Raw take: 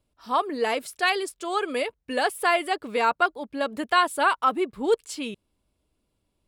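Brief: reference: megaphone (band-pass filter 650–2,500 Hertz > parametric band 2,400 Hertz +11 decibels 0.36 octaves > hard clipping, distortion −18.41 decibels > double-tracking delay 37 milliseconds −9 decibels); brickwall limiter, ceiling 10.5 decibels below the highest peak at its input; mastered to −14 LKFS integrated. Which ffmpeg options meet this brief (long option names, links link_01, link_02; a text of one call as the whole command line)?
ffmpeg -i in.wav -filter_complex "[0:a]alimiter=limit=-18dB:level=0:latency=1,highpass=650,lowpass=2500,equalizer=frequency=2400:width_type=o:width=0.36:gain=11,asoftclip=type=hard:threshold=-21.5dB,asplit=2[link_01][link_02];[link_02]adelay=37,volume=-9dB[link_03];[link_01][link_03]amix=inputs=2:normalize=0,volume=17dB" out.wav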